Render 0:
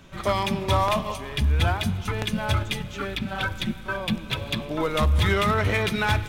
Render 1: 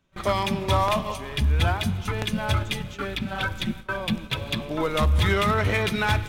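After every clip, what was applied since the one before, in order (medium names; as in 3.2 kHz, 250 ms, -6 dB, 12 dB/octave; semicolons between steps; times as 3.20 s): gate with hold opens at -24 dBFS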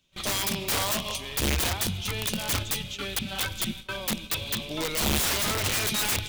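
resonant high shelf 2.2 kHz +11.5 dB, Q 1.5; integer overflow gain 15.5 dB; trim -5 dB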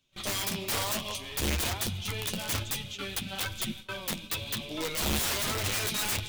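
flange 1.1 Hz, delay 7.5 ms, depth 4.4 ms, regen -34%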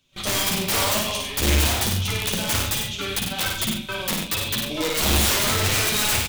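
multi-tap echo 54/97/137/304 ms -4/-6/-13.5/-19 dB; trim +7 dB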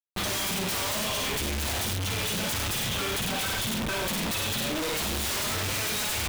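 Schmitt trigger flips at -36.5 dBFS; trim -6 dB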